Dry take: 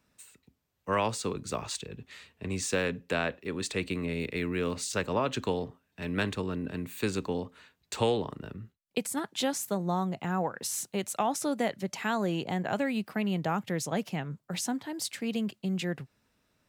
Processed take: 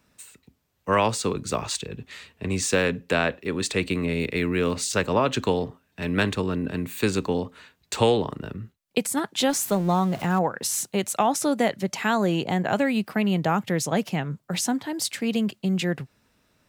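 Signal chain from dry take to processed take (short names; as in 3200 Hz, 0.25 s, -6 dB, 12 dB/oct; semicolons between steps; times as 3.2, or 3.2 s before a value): 9.49–10.39 zero-crossing step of -41.5 dBFS; gain +7 dB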